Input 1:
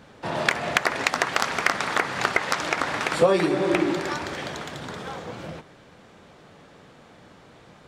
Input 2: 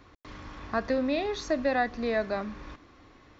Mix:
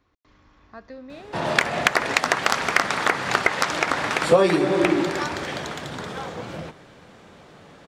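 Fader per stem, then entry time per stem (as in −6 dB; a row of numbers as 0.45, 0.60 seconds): +2.5, −13.0 decibels; 1.10, 0.00 seconds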